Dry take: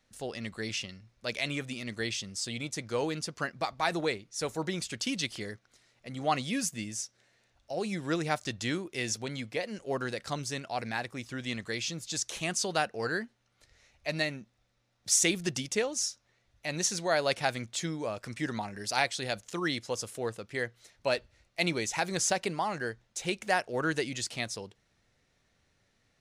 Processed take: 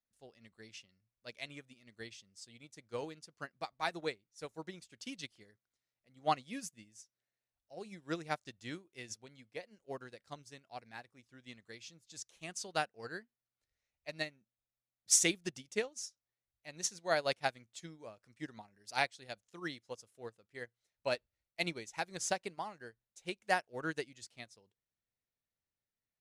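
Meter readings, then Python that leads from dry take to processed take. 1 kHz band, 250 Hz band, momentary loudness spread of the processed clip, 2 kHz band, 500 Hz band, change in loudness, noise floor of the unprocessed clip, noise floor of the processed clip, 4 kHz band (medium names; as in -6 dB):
-6.0 dB, -11.5 dB, 18 LU, -8.0 dB, -8.0 dB, -6.5 dB, -73 dBFS, under -85 dBFS, -9.0 dB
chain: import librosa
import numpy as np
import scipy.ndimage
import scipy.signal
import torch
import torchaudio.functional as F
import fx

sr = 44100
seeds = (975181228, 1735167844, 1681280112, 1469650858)

y = fx.upward_expand(x, sr, threshold_db=-40.0, expansion=2.5)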